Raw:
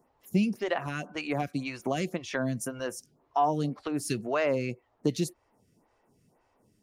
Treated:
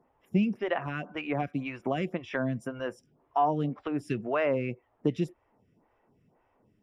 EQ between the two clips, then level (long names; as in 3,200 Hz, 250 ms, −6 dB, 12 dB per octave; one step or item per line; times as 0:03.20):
Savitzky-Golay smoothing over 25 samples
0.0 dB